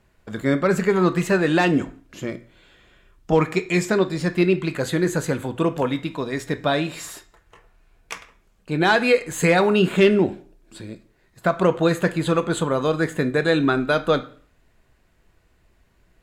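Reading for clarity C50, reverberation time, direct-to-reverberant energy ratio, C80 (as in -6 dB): 16.0 dB, 0.45 s, 8.5 dB, 20.0 dB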